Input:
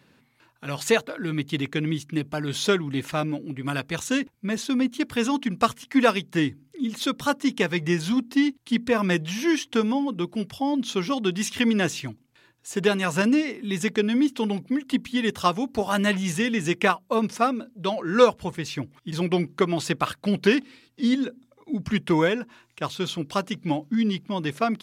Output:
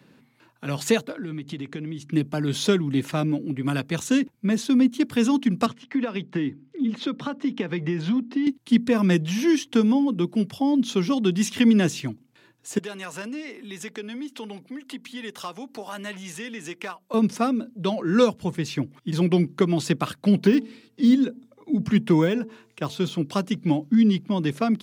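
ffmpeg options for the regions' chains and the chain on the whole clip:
-filter_complex "[0:a]asettb=1/sr,asplit=3[a][b][c];[a]atrim=end=1.124[d];[b]atrim=start=1.12:end=2.11,asetpts=PTS-STARTPTS,afade=t=in:d=0.004:c=qsin,afade=t=out:st=0.986:d=0.004:c=qsin,lowpass=9.1k,acompressor=threshold=-34dB:ratio=6:attack=3.2:release=140:knee=1:detection=peak[e];[c]atrim=start=2.106[f];[d][e]acrossfade=d=0.004:c1=hsin:c2=qsin[g];[g][f]acrossfade=d=0.004:c1=qsin:c2=hsin,asettb=1/sr,asplit=3[h][i][j];[h]atrim=end=5.664[k];[i]atrim=start=5.66:end=8.47,asetpts=PTS-STARTPTS,afade=t=in:d=0.004:c=qsin,afade=t=out:st=2.806:d=0.004:c=qsin,highpass=150,lowpass=3.3k,acompressor=threshold=-24dB:ratio=12:attack=3.2:release=140:knee=1:detection=peak[l];[j]atrim=start=8.466[m];[k][l]acrossfade=d=0.004:c1=hsin:c2=qsin[n];[n][m]acrossfade=d=0.004:c1=qsin:c2=hsin,asettb=1/sr,asplit=3[o][p][q];[o]atrim=end=12.784[r];[p]atrim=start=12.78:end=17.14,asetpts=PTS-STARTPTS,afade=t=in:d=0.004:c=qsin,afade=t=out:st=4.356:d=0.004:c=qsin,acompressor=threshold=-35dB:ratio=2:attack=3.2:release=140:knee=1:detection=peak,volume=22.5dB,asoftclip=hard,volume=-22.5dB,highpass=f=750:p=1[s];[q]atrim=start=17.136[t];[r][s]acrossfade=d=0.004:c1=hsin:c2=qsin[u];[u][t]acrossfade=d=0.004:c1=qsin:c2=hsin,asettb=1/sr,asplit=3[v][w][x];[v]atrim=end=20.344[y];[w]atrim=start=20.34:end=23.18,asetpts=PTS-STARTPTS,afade=t=in:d=0.004:c=qsin,afade=t=out:st=2.836:d=0.004:c=qsin,deesser=0.85,bandreject=f=221.7:t=h:w=4,bandreject=f=443.4:t=h:w=4,bandreject=f=665.1:t=h:w=4,bandreject=f=886.8:t=h:w=4[z];[x]atrim=start=23.176[aa];[y][z]acrossfade=d=0.004:c1=hsin:c2=qsin[ab];[ab][aa]acrossfade=d=0.004:c1=qsin:c2=hsin,highpass=160,lowshelf=f=400:g=9.5,acrossover=split=300|3000[ac][ad][ae];[ad]acompressor=threshold=-32dB:ratio=1.5[af];[ac][af][ae]amix=inputs=3:normalize=0"

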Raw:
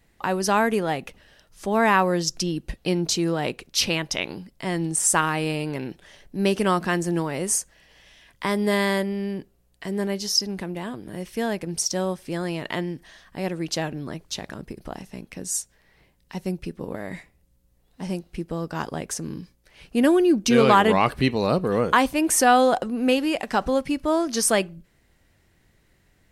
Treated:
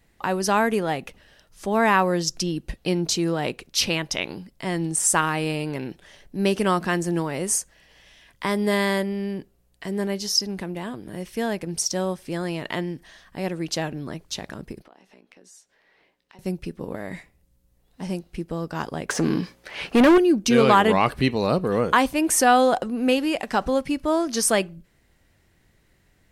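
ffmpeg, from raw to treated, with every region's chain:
-filter_complex "[0:a]asettb=1/sr,asplit=3[a][b][c];[a]atrim=end=14.824[d];[b]atrim=start=14.82:end=16.39,asetpts=PTS-STARTPTS,afade=t=in:d=0.004:c=qsin,afade=t=out:st=1.566:d=0.004:c=qsin,acrossover=split=260 4900:gain=0.0631 1 0.2[e][f][g];[e][f][g]amix=inputs=3:normalize=0,asplit=2[h][i];[i]adelay=16,volume=-11dB[j];[h][j]amix=inputs=2:normalize=0,atrim=end_sample=69237,acompressor=threshold=-52dB:ratio=3:attack=3.2:release=140:knee=1:detection=peak[k];[c]atrim=start=16.386[l];[d][k]acrossfade=d=0.004:c1=hsin:c2=qsin[m];[m][l]acrossfade=d=0.004:c1=qsin:c2=hsin,asettb=1/sr,asplit=3[n][o][p];[n]atrim=end=19.094[q];[o]atrim=start=19.09:end=20.18,asetpts=PTS-STARTPTS,afade=t=in:d=0.004:c=qsin,afade=t=out:st=1.086:d=0.004:c=qsin,deesser=0.65,asplit=2[r][s];[s]highpass=f=720:p=1,volume=28dB,asoftclip=type=tanh:threshold=-7.5dB[t];[r][t]amix=inputs=2:normalize=0,lowpass=f=2k:p=1,volume=-6dB[u];[p]atrim=start=20.176[v];[q][u]acrossfade=d=0.004:c1=hsin:c2=qsin[w];[w][v]acrossfade=d=0.004:c1=qsin:c2=hsin"

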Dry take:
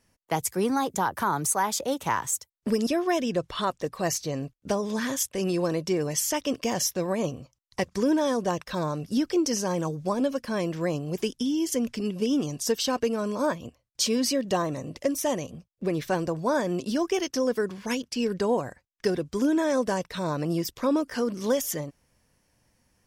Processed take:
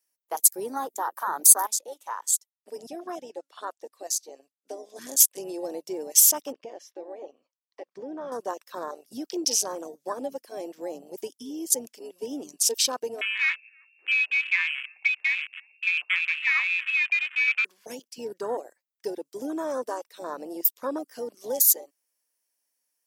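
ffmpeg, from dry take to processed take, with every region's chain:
-filter_complex "[0:a]asettb=1/sr,asplit=3[a][b][c];[a]atrim=end=1.674[d];[b]atrim=start=1.67:end=4.96,asetpts=PTS-STARTPTS,afade=t=in:d=0.004:c=qsin,afade=t=out:st=3.286:d=0.004:c=qsin,lowpass=11k,flanger=delay=0.8:depth=2.9:regen=88:speed=1.4:shape=triangular[e];[c]atrim=start=4.956[f];[d][e]acrossfade=d=0.004:c1=hsin:c2=qsin[g];[g][f]acrossfade=d=0.004:c1=qsin:c2=hsin,asettb=1/sr,asplit=3[h][i][j];[h]atrim=end=6.524[k];[i]atrim=start=6.52:end=8.32,asetpts=PTS-STARTPTS,afade=t=in:d=0.004:c=qsin,afade=t=out:st=1.796:d=0.004:c=qsin,lowpass=2.6k,acompressor=threshold=-30dB:ratio=2:attack=3.2:release=140:knee=1:detection=peak[l];[j]atrim=start=8.316[m];[k][l]acrossfade=d=0.004:c1=hsin:c2=qsin[n];[n][m]acrossfade=d=0.004:c1=qsin:c2=hsin,asettb=1/sr,asplit=3[o][p][q];[o]atrim=end=13.214[r];[p]atrim=start=13.21:end=17.65,asetpts=PTS-STARTPTS,afade=t=in:d=0.004:c=qsin,afade=t=out:st=4.436:d=0.004:c=qsin,aeval=exprs='val(0)+0.00398*(sin(2*PI*60*n/s)+sin(2*PI*2*60*n/s)/2+sin(2*PI*3*60*n/s)/3+sin(2*PI*4*60*n/s)/4+sin(2*PI*5*60*n/s)/5)':c=same,aecho=1:1:319|638|957:0.133|0.0467|0.0163,atrim=end_sample=195804,lowpass=f=2.4k:t=q:w=0.5098,lowpass=f=2.4k:t=q:w=0.6013,lowpass=f=2.4k:t=q:w=0.9,lowpass=f=2.4k:t=q:w=2.563,afreqshift=-2800[s];[q]atrim=start=17.646[t];[r][s]acrossfade=d=0.004:c1=hsin:c2=qsin[u];[u][t]acrossfade=d=0.004:c1=qsin:c2=hsin,highpass=f=270:w=0.5412,highpass=f=270:w=1.3066,aemphasis=mode=production:type=riaa,afwtdn=0.0398,volume=-2dB"

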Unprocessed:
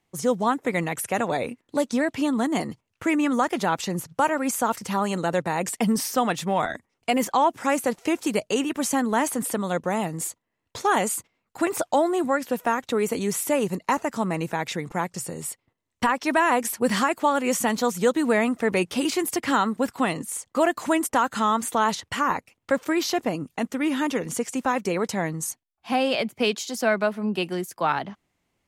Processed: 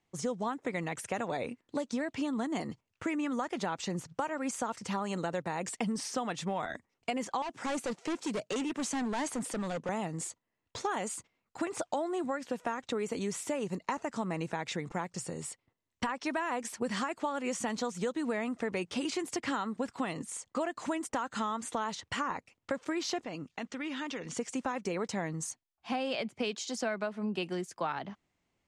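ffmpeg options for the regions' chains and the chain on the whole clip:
-filter_complex "[0:a]asettb=1/sr,asplit=3[a][b][c];[a]atrim=end=7.424[d];[b]atrim=start=7.42:end=9.89,asetpts=PTS-STARTPTS,afade=t=in:d=0.004:c=qsin,afade=t=out:st=2.466:d=0.004:c=qsin,highpass=f=110:w=0.5412,highpass=f=110:w=1.3066,asoftclip=type=hard:threshold=-24.5dB[e];[c]atrim=start=9.886[f];[d][e]acrossfade=d=0.004:c1=hsin:c2=qsin[g];[g][f]acrossfade=d=0.004:c1=qsin:c2=hsin,asettb=1/sr,asplit=3[h][i][j];[h]atrim=end=23.244[k];[i]atrim=start=23.24:end=24.37,asetpts=PTS-STARTPTS,afade=t=in:d=0.004:c=qsin,afade=t=out:st=1.126:d=0.004:c=qsin,lowpass=5.3k,tiltshelf=f=1.4k:g=-4.5,acompressor=threshold=-31dB:ratio=2.5:attack=3.2:release=140:knee=1:detection=peak[l];[j]atrim=start=24.366[m];[k][l]acrossfade=d=0.004:c1=hsin:c2=qsin[n];[n][m]acrossfade=d=0.004:c1=qsin:c2=hsin,acompressor=threshold=-25dB:ratio=6,lowpass=f=8.4k:w=0.5412,lowpass=f=8.4k:w=1.3066,volume=-5dB"

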